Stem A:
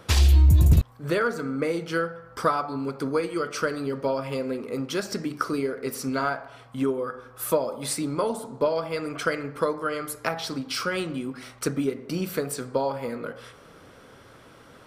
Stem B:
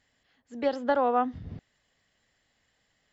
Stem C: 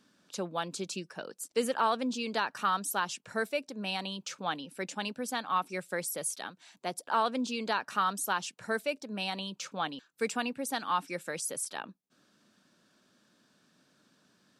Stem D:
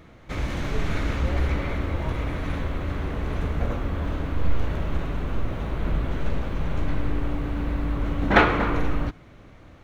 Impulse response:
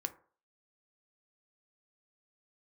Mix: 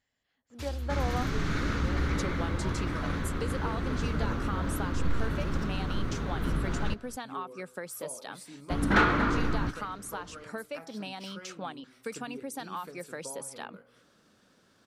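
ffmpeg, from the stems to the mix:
-filter_complex "[0:a]adelay=500,volume=-19.5dB,asplit=2[a][b];[b]volume=-17.5dB[c];[1:a]volume=-10dB[d];[2:a]acompressor=threshold=-35dB:ratio=6,adynamicequalizer=threshold=0.00224:dfrequency=1700:dqfactor=0.7:tfrequency=1700:tqfactor=0.7:attack=5:release=100:ratio=0.375:range=2:mode=cutabove:tftype=highshelf,adelay=1850,volume=1dB[e];[3:a]firequalizer=gain_entry='entry(180,0);entry(620,-16);entry(1400,-5);entry(2300,-10);entry(4700,3)':delay=0.05:min_phase=1,asplit=2[f][g];[g]highpass=f=720:p=1,volume=18dB,asoftclip=type=tanh:threshold=-7.5dB[h];[f][h]amix=inputs=2:normalize=0,lowpass=f=1.3k:p=1,volume=-6dB,adelay=600,volume=-2dB,asplit=3[i][j][k];[i]atrim=end=6.94,asetpts=PTS-STARTPTS,afade=t=out:st=6.936:d=0.004:c=hsin[l];[j]atrim=start=6.94:end=8.7,asetpts=PTS-STARTPTS,volume=0[m];[k]atrim=start=8.7,asetpts=PTS-STARTPTS,afade=t=in:d=0.004:c=hsin[n];[l][m][n]concat=n=3:v=0:a=1,asplit=2[o][p];[p]volume=-20dB[q];[c][q]amix=inputs=2:normalize=0,aecho=0:1:227:1[r];[a][d][e][o][r]amix=inputs=5:normalize=0"

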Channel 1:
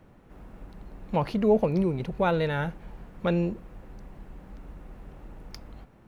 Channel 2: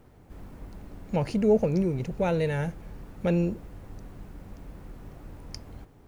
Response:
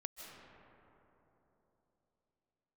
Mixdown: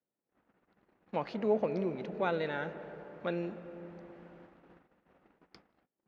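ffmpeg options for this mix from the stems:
-filter_complex "[0:a]equalizer=f=1.1k:t=o:w=0.86:g=-6,volume=-1.5dB,asplit=2[a][b];[b]volume=-9dB[c];[1:a]volume=-1,volume=-6dB[d];[2:a]atrim=start_sample=2205[e];[c][e]afir=irnorm=-1:irlink=0[f];[a][d][f]amix=inputs=3:normalize=0,highpass=250,lowpass=2.6k,agate=range=-34dB:threshold=-54dB:ratio=16:detection=peak"

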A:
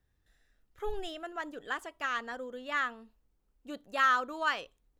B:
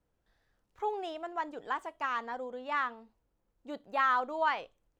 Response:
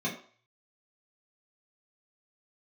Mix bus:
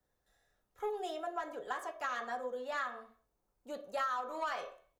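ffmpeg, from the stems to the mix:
-filter_complex "[0:a]highpass=f=470:w=0.5412,highpass=f=470:w=1.3066,equalizer=f=2.5k:w=0.79:g=-9.5,volume=2.5dB,asplit=2[a][b];[b]volume=-7.5dB[c];[1:a]lowpass=2.5k,asoftclip=type=tanh:threshold=-29.5dB,adelay=3.8,volume=-5dB[d];[2:a]atrim=start_sample=2205[e];[c][e]afir=irnorm=-1:irlink=0[f];[a][d][f]amix=inputs=3:normalize=0,acompressor=threshold=-33dB:ratio=6"

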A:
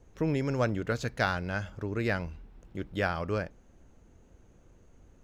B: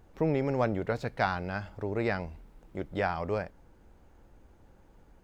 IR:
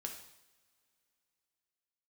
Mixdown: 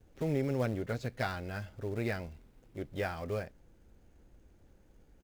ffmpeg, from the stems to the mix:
-filter_complex "[0:a]acrusher=bits=3:mode=log:mix=0:aa=0.000001,volume=-13.5dB[a];[1:a]equalizer=f=1k:t=o:w=1:g=-9.5,adelay=8.1,volume=-3.5dB[b];[a][b]amix=inputs=2:normalize=0"

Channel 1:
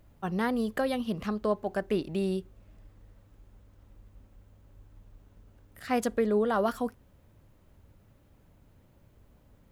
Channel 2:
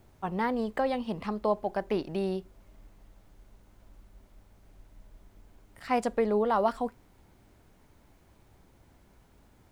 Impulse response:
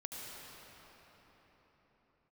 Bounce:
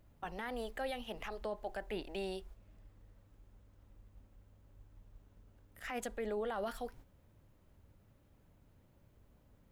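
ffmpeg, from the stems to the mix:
-filter_complex "[0:a]volume=-6dB,asplit=2[a][b];[1:a]lowshelf=f=69:g=11,alimiter=limit=-23dB:level=0:latency=1:release=346,volume=-1,volume=-4dB[c];[b]apad=whole_len=428432[d];[c][d]sidechaingate=range=-33dB:threshold=-53dB:ratio=16:detection=peak[e];[a][e]amix=inputs=2:normalize=0,alimiter=level_in=6dB:limit=-24dB:level=0:latency=1:release=34,volume=-6dB"

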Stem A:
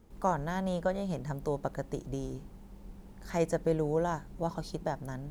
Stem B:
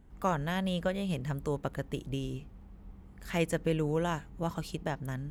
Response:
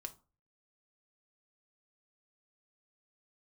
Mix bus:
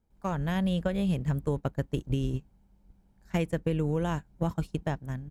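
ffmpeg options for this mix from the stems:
-filter_complex "[0:a]aecho=1:1:1.3:0.33,volume=32.5dB,asoftclip=hard,volume=-32.5dB,volume=-16.5dB,asplit=2[a][b];[1:a]lowshelf=f=300:g=8.5,dynaudnorm=f=120:g=9:m=11.5dB,volume=-6dB[c];[b]apad=whole_len=233972[d];[c][d]sidechaingate=range=-33dB:threshold=-54dB:ratio=16:detection=peak[e];[a][e]amix=inputs=2:normalize=0,acompressor=threshold=-24dB:ratio=6"

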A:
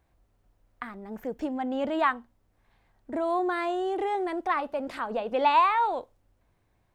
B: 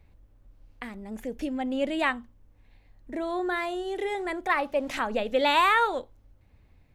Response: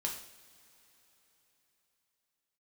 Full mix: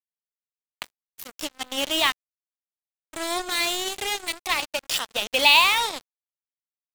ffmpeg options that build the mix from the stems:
-filter_complex "[0:a]volume=-3dB,asplit=3[a][b][c];[b]volume=-16dB[d];[1:a]equalizer=f=180:t=o:w=1.1:g=9.5,volume=-1,volume=-10dB[e];[c]apad=whole_len=306089[f];[e][f]sidechaincompress=threshold=-37dB:ratio=8:attack=28:release=491[g];[2:a]atrim=start_sample=2205[h];[d][h]afir=irnorm=-1:irlink=0[i];[a][g][i]amix=inputs=3:normalize=0,aexciter=amount=14.6:drive=4.7:freq=2.3k,acrusher=bits=3:mix=0:aa=0.5"

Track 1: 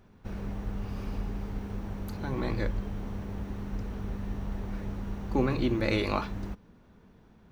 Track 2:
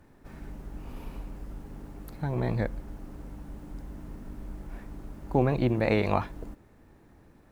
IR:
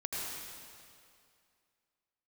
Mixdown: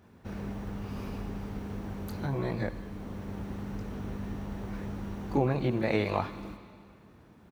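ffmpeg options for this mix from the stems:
-filter_complex "[0:a]volume=-0.5dB,asplit=2[a][b];[b]volume=-17dB[c];[1:a]adelay=25,volume=-3.5dB,asplit=2[d][e];[e]apad=whole_len=331297[f];[a][f]sidechaincompress=threshold=-34dB:ratio=8:attack=16:release=1020[g];[2:a]atrim=start_sample=2205[h];[c][h]afir=irnorm=-1:irlink=0[i];[g][d][i]amix=inputs=3:normalize=0,highpass=67"

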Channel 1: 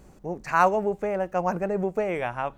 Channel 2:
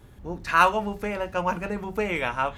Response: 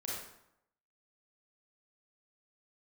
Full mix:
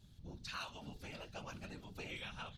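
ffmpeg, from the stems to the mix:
-filter_complex "[0:a]volume=-13.5dB[a];[1:a]highshelf=f=7.4k:g=-7.5,adelay=1.6,volume=-3.5dB[b];[a][b]amix=inputs=2:normalize=0,equalizer=f=250:t=o:w=1:g=-10,equalizer=f=500:t=o:w=1:g=-12,equalizer=f=1k:t=o:w=1:g=-11,equalizer=f=2k:t=o:w=1:g=-10,equalizer=f=4k:t=o:w=1:g=12,afftfilt=real='hypot(re,im)*cos(2*PI*random(0))':imag='hypot(re,im)*sin(2*PI*random(1))':win_size=512:overlap=0.75,acompressor=threshold=-42dB:ratio=6"

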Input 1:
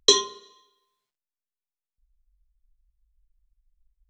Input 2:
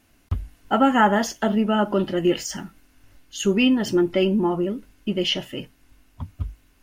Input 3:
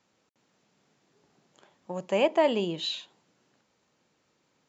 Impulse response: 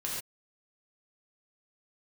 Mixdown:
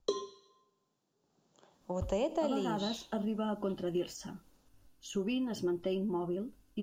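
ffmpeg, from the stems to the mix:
-filter_complex "[0:a]highshelf=f=2.2k:g=-11.5,acrossover=split=1700[a][b];[a]aeval=exprs='val(0)*(1-0.7/2+0.7/2*cos(2*PI*1.4*n/s))':c=same[c];[b]aeval=exprs='val(0)*(1-0.7/2-0.7/2*cos(2*PI*1.4*n/s))':c=same[d];[c][d]amix=inputs=2:normalize=0,volume=-3.5dB,asplit=2[e][f];[f]volume=-20.5dB[g];[1:a]agate=range=-33dB:threshold=-53dB:ratio=3:detection=peak,adelay=1700,volume=-10.5dB[h];[2:a]volume=-1dB,afade=t=in:st=1.18:d=0.65:silence=0.266073,asplit=2[i][j];[j]volume=-18dB[k];[3:a]atrim=start_sample=2205[l];[g][k]amix=inputs=2:normalize=0[m];[m][l]afir=irnorm=-1:irlink=0[n];[e][h][i][n]amix=inputs=4:normalize=0,acrossover=split=470|4300[o][p][q];[o]acompressor=threshold=-33dB:ratio=4[r];[p]acompressor=threshold=-36dB:ratio=4[s];[q]acompressor=threshold=-48dB:ratio=4[t];[r][s][t]amix=inputs=3:normalize=0,equalizer=f=2.1k:t=o:w=0.85:g=-11.5"

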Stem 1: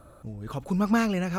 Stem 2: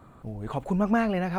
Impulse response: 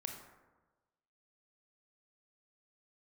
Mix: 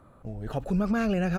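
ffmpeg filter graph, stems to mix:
-filter_complex "[0:a]volume=1dB[a];[1:a]asubboost=boost=11.5:cutoff=100,volume=-1,adelay=1.2,volume=-5dB,asplit=2[b][c];[c]apad=whole_len=61111[d];[a][d]sidechaingate=range=-10dB:threshold=-48dB:ratio=16:detection=peak[e];[e][b]amix=inputs=2:normalize=0,highshelf=f=3.6k:g=-6.5,alimiter=limit=-18.5dB:level=0:latency=1:release=36"

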